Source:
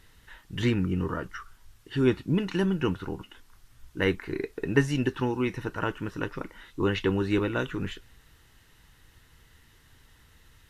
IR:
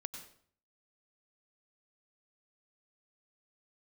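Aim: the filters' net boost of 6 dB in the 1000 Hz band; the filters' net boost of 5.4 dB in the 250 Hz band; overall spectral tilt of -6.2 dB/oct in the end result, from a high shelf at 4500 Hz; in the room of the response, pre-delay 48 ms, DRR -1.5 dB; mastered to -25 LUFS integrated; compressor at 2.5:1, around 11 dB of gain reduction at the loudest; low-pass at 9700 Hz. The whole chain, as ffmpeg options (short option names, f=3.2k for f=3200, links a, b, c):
-filter_complex "[0:a]lowpass=9.7k,equalizer=f=250:t=o:g=6.5,equalizer=f=1k:t=o:g=7.5,highshelf=f=4.5k:g=-4,acompressor=threshold=-29dB:ratio=2.5,asplit=2[a][b];[1:a]atrim=start_sample=2205,adelay=48[c];[b][c]afir=irnorm=-1:irlink=0,volume=3.5dB[d];[a][d]amix=inputs=2:normalize=0,volume=3dB"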